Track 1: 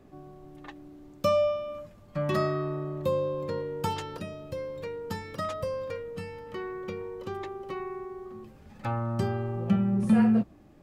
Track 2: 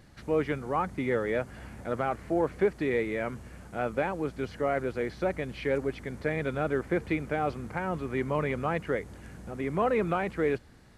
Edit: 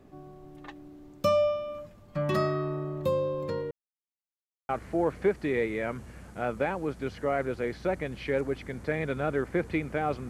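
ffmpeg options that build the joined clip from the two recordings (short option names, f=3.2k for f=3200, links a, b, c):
-filter_complex "[0:a]apad=whole_dur=10.29,atrim=end=10.29,asplit=2[a][b];[a]atrim=end=3.71,asetpts=PTS-STARTPTS,afade=t=out:st=3.706:d=0.004:c=hsin[c];[b]atrim=start=3.71:end=4.69,asetpts=PTS-STARTPTS,volume=0[d];[1:a]atrim=start=2.06:end=7.66,asetpts=PTS-STARTPTS,afade=t=in:d=0.004:c=hsin[e];[c][d][e]concat=n=3:v=0:a=1"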